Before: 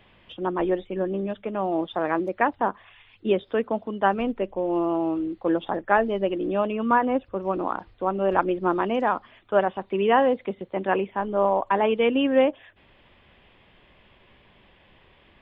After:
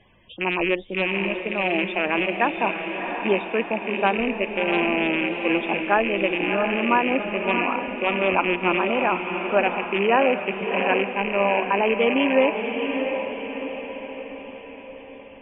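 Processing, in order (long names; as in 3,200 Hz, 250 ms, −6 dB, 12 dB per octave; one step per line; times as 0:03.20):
loose part that buzzes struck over −35 dBFS, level −13 dBFS
spectral peaks only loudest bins 64
feedback delay with all-pass diffusion 687 ms, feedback 53%, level −6 dB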